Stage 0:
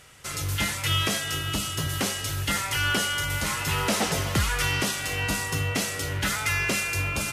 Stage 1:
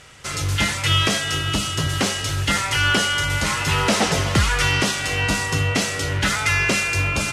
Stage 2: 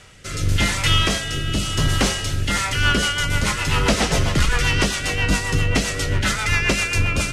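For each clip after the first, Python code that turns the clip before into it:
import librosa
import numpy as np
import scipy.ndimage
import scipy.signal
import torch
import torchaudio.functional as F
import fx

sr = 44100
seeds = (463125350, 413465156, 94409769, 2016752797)

y1 = scipy.signal.sosfilt(scipy.signal.butter(2, 8000.0, 'lowpass', fs=sr, output='sos'), x)
y1 = F.gain(torch.from_numpy(y1), 6.5).numpy()
y2 = fx.octave_divider(y1, sr, octaves=2, level_db=0.0)
y2 = 10.0 ** (-8.5 / 20.0) * np.tanh(y2 / 10.0 ** (-8.5 / 20.0))
y2 = fx.rotary_switch(y2, sr, hz=0.9, then_hz=7.5, switch_at_s=2.29)
y2 = F.gain(torch.from_numpy(y2), 2.5).numpy()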